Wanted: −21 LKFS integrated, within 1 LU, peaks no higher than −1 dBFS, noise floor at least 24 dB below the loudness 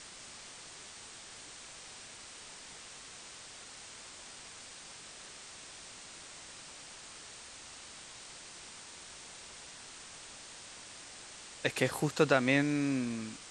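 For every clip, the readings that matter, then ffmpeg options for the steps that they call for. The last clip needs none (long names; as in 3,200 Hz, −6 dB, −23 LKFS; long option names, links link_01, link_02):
background noise floor −50 dBFS; target noise floor −63 dBFS; integrated loudness −38.5 LKFS; sample peak −11.0 dBFS; target loudness −21.0 LKFS
→ -af "afftdn=noise_reduction=13:noise_floor=-50"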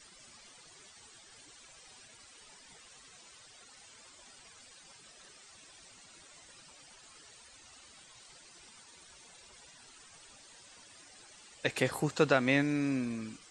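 background noise floor −57 dBFS; integrated loudness −31.0 LKFS; sample peak −11.5 dBFS; target loudness −21.0 LKFS
→ -af "volume=10dB"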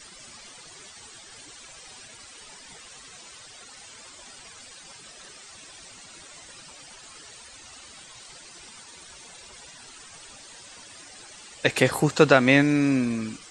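integrated loudness −21.0 LKFS; sample peak −1.5 dBFS; background noise floor −47 dBFS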